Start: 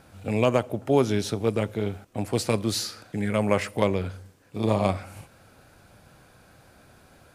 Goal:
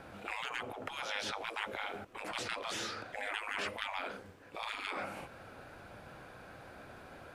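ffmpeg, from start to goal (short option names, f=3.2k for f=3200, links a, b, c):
-filter_complex "[0:a]acrossover=split=500|6900[a][b][c];[a]acompressor=threshold=-25dB:ratio=4[d];[b]acompressor=threshold=-26dB:ratio=4[e];[c]acompressor=threshold=-53dB:ratio=4[f];[d][e][f]amix=inputs=3:normalize=0,afftfilt=real='re*lt(hypot(re,im),0.0447)':imag='im*lt(hypot(re,im),0.0447)':win_size=1024:overlap=0.75,bass=f=250:g=-7,treble=f=4k:g=-13,volume=5dB"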